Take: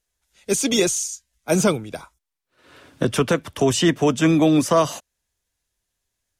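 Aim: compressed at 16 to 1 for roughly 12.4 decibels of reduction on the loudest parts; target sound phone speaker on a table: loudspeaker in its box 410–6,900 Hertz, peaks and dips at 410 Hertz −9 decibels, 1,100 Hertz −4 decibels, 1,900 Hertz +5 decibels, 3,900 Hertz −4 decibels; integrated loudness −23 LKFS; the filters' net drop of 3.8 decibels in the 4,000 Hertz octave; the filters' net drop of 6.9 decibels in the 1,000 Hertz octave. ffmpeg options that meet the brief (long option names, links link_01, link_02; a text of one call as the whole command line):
ffmpeg -i in.wav -af "equalizer=frequency=1000:width_type=o:gain=-7,equalizer=frequency=4000:width_type=o:gain=-3,acompressor=threshold=-26dB:ratio=16,highpass=frequency=410:width=0.5412,highpass=frequency=410:width=1.3066,equalizer=frequency=410:width_type=q:width=4:gain=-9,equalizer=frequency=1100:width_type=q:width=4:gain=-4,equalizer=frequency=1900:width_type=q:width=4:gain=5,equalizer=frequency=3900:width_type=q:width=4:gain=-4,lowpass=frequency=6900:width=0.5412,lowpass=frequency=6900:width=1.3066,volume=14dB" out.wav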